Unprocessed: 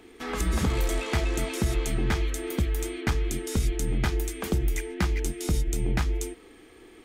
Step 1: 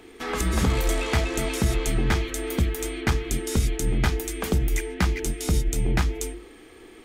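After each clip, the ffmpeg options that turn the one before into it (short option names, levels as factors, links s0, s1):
-af "bandreject=f=50:t=h:w=6,bandreject=f=100:t=h:w=6,bandreject=f=150:t=h:w=6,bandreject=f=200:t=h:w=6,bandreject=f=250:t=h:w=6,bandreject=f=300:t=h:w=6,bandreject=f=350:t=h:w=6,volume=1.58"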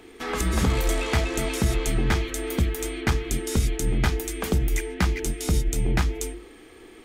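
-af anull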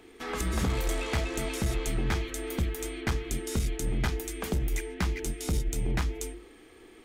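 -af "aeval=exprs='clip(val(0),-1,0.119)':c=same,volume=0.531"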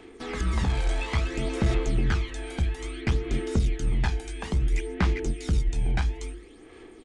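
-filter_complex "[0:a]aresample=22050,aresample=44100,acrossover=split=5400[s0][s1];[s1]acompressor=threshold=0.00282:ratio=4:attack=1:release=60[s2];[s0][s2]amix=inputs=2:normalize=0,aphaser=in_gain=1:out_gain=1:delay=1.3:decay=0.49:speed=0.59:type=sinusoidal"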